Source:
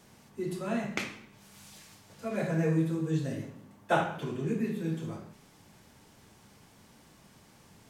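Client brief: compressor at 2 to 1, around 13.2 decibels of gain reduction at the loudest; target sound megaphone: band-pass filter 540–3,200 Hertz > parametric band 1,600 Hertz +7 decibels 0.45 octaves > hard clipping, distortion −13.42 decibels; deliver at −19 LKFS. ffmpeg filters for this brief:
ffmpeg -i in.wav -af "acompressor=threshold=-46dB:ratio=2,highpass=540,lowpass=3200,equalizer=frequency=1600:width_type=o:width=0.45:gain=7,asoftclip=type=hard:threshold=-35.5dB,volume=30dB" out.wav

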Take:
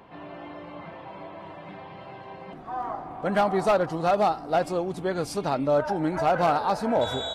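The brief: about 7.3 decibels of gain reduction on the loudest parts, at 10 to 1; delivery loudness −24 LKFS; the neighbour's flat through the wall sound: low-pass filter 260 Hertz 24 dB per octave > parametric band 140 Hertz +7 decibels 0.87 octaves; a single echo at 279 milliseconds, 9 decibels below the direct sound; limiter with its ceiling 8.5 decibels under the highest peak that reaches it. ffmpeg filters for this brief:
ffmpeg -i in.wav -af "acompressor=threshold=-25dB:ratio=10,alimiter=level_in=2dB:limit=-24dB:level=0:latency=1,volume=-2dB,lowpass=frequency=260:width=0.5412,lowpass=frequency=260:width=1.3066,equalizer=frequency=140:width_type=o:width=0.87:gain=7,aecho=1:1:279:0.355,volume=16dB" out.wav

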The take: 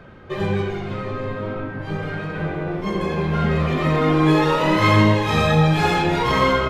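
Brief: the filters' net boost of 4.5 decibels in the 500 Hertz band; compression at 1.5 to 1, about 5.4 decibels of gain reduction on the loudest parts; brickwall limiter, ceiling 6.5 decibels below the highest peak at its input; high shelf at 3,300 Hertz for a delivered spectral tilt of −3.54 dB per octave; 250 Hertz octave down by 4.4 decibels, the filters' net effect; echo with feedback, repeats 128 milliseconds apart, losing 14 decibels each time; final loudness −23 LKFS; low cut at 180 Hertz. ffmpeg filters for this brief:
ffmpeg -i in.wav -af "highpass=180,equalizer=frequency=250:width_type=o:gain=-8,equalizer=frequency=500:width_type=o:gain=7.5,highshelf=frequency=3300:gain=5,acompressor=threshold=-27dB:ratio=1.5,alimiter=limit=-16dB:level=0:latency=1,aecho=1:1:128|256:0.2|0.0399,volume=2.5dB" out.wav

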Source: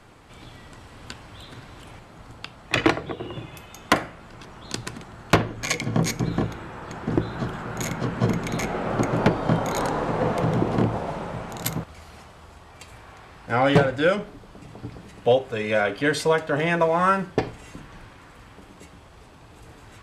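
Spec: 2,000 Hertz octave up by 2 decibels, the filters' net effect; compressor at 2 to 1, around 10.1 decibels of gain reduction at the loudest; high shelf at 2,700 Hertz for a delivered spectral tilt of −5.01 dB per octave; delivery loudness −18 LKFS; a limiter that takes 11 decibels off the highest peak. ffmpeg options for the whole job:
ffmpeg -i in.wav -af "equalizer=frequency=2000:width_type=o:gain=5,highshelf=frequency=2700:gain=-6,acompressor=threshold=-32dB:ratio=2,volume=17dB,alimiter=limit=-5.5dB:level=0:latency=1" out.wav

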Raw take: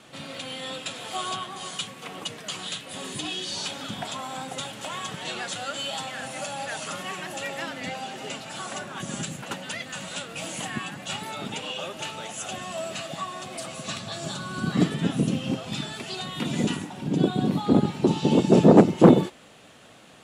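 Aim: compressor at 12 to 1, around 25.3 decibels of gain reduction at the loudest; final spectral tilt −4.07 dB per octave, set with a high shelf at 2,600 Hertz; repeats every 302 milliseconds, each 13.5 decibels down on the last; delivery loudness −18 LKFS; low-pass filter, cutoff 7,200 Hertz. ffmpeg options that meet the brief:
ffmpeg -i in.wav -af "lowpass=7200,highshelf=frequency=2600:gain=-5,acompressor=threshold=-34dB:ratio=12,aecho=1:1:302|604:0.211|0.0444,volume=20dB" out.wav

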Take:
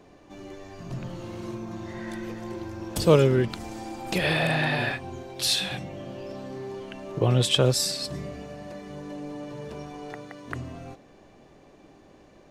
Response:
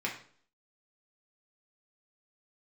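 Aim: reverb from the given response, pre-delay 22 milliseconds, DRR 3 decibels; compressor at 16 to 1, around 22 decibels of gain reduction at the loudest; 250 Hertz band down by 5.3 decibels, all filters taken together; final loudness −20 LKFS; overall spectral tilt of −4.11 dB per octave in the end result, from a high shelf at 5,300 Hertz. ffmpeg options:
-filter_complex "[0:a]equalizer=frequency=250:width_type=o:gain=-9,highshelf=frequency=5300:gain=7.5,acompressor=threshold=-37dB:ratio=16,asplit=2[link_01][link_02];[1:a]atrim=start_sample=2205,adelay=22[link_03];[link_02][link_03]afir=irnorm=-1:irlink=0,volume=-8.5dB[link_04];[link_01][link_04]amix=inputs=2:normalize=0,volume=20.5dB"

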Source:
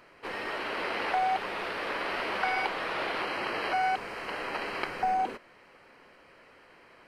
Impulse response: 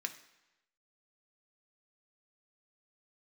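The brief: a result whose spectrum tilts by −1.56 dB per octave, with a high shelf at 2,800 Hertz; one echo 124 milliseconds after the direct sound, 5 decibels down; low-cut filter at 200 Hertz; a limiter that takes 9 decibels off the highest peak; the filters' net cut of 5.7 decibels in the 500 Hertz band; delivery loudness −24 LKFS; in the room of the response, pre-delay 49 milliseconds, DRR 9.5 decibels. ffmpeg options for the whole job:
-filter_complex "[0:a]highpass=200,equalizer=frequency=500:width_type=o:gain=-7.5,highshelf=frequency=2800:gain=3.5,alimiter=level_in=1dB:limit=-24dB:level=0:latency=1,volume=-1dB,aecho=1:1:124:0.562,asplit=2[link_01][link_02];[1:a]atrim=start_sample=2205,adelay=49[link_03];[link_02][link_03]afir=irnorm=-1:irlink=0,volume=-9.5dB[link_04];[link_01][link_04]amix=inputs=2:normalize=0,volume=8.5dB"

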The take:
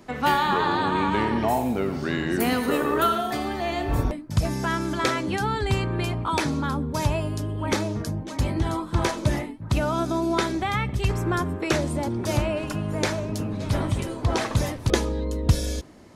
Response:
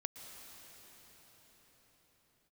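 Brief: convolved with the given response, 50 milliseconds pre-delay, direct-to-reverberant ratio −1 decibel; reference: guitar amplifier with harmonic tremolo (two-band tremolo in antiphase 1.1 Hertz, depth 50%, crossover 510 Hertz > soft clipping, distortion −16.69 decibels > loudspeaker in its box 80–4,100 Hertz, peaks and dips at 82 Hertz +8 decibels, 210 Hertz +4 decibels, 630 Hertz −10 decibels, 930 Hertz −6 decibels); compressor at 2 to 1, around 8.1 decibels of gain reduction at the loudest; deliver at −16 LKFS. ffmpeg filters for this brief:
-filter_complex "[0:a]acompressor=threshold=-28dB:ratio=2,asplit=2[link_01][link_02];[1:a]atrim=start_sample=2205,adelay=50[link_03];[link_02][link_03]afir=irnorm=-1:irlink=0,volume=2.5dB[link_04];[link_01][link_04]amix=inputs=2:normalize=0,acrossover=split=510[link_05][link_06];[link_05]aeval=exprs='val(0)*(1-0.5/2+0.5/2*cos(2*PI*1.1*n/s))':channel_layout=same[link_07];[link_06]aeval=exprs='val(0)*(1-0.5/2-0.5/2*cos(2*PI*1.1*n/s))':channel_layout=same[link_08];[link_07][link_08]amix=inputs=2:normalize=0,asoftclip=threshold=-21.5dB,highpass=80,equalizer=frequency=82:width_type=q:width=4:gain=8,equalizer=frequency=210:width_type=q:width=4:gain=4,equalizer=frequency=630:width_type=q:width=4:gain=-10,equalizer=frequency=930:width_type=q:width=4:gain=-6,lowpass=frequency=4100:width=0.5412,lowpass=frequency=4100:width=1.3066,volume=14.5dB"

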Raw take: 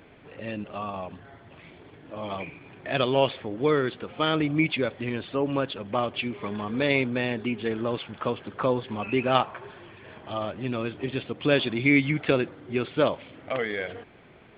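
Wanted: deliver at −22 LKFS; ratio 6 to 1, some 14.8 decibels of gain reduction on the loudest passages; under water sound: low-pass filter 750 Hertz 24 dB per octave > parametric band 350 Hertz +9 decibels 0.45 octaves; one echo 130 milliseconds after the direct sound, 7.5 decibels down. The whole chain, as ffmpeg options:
ffmpeg -i in.wav -af "acompressor=threshold=-32dB:ratio=6,lowpass=frequency=750:width=0.5412,lowpass=frequency=750:width=1.3066,equalizer=frequency=350:width_type=o:width=0.45:gain=9,aecho=1:1:130:0.422,volume=12.5dB" out.wav

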